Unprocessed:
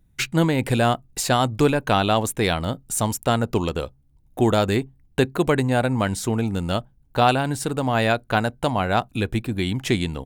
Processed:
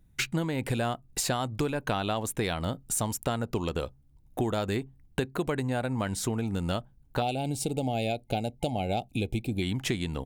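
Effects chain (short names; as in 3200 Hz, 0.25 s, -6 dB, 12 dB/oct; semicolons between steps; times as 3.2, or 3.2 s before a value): spectral gain 7.22–9.62, 870–2100 Hz -21 dB; compressor, threshold -25 dBFS, peak gain reduction 12 dB; gain -1 dB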